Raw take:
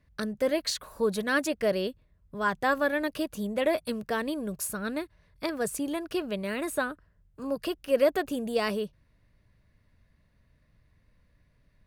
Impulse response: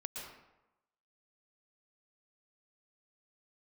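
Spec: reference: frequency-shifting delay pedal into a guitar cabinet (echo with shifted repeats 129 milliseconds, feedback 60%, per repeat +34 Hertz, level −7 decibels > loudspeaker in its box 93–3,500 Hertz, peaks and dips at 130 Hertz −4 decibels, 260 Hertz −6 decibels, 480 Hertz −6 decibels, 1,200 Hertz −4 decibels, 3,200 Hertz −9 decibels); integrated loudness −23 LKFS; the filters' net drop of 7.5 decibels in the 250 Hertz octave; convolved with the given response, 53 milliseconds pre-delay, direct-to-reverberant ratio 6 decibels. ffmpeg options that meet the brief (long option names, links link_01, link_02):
-filter_complex "[0:a]equalizer=frequency=250:width_type=o:gain=-6,asplit=2[link_01][link_02];[1:a]atrim=start_sample=2205,adelay=53[link_03];[link_02][link_03]afir=irnorm=-1:irlink=0,volume=-5dB[link_04];[link_01][link_04]amix=inputs=2:normalize=0,asplit=9[link_05][link_06][link_07][link_08][link_09][link_10][link_11][link_12][link_13];[link_06]adelay=129,afreqshift=34,volume=-7dB[link_14];[link_07]adelay=258,afreqshift=68,volume=-11.4dB[link_15];[link_08]adelay=387,afreqshift=102,volume=-15.9dB[link_16];[link_09]adelay=516,afreqshift=136,volume=-20.3dB[link_17];[link_10]adelay=645,afreqshift=170,volume=-24.7dB[link_18];[link_11]adelay=774,afreqshift=204,volume=-29.2dB[link_19];[link_12]adelay=903,afreqshift=238,volume=-33.6dB[link_20];[link_13]adelay=1032,afreqshift=272,volume=-38.1dB[link_21];[link_05][link_14][link_15][link_16][link_17][link_18][link_19][link_20][link_21]amix=inputs=9:normalize=0,highpass=93,equalizer=frequency=130:width_type=q:width=4:gain=-4,equalizer=frequency=260:width_type=q:width=4:gain=-6,equalizer=frequency=480:width_type=q:width=4:gain=-6,equalizer=frequency=1200:width_type=q:width=4:gain=-4,equalizer=frequency=3200:width_type=q:width=4:gain=-9,lowpass=frequency=3500:width=0.5412,lowpass=frequency=3500:width=1.3066,volume=9dB"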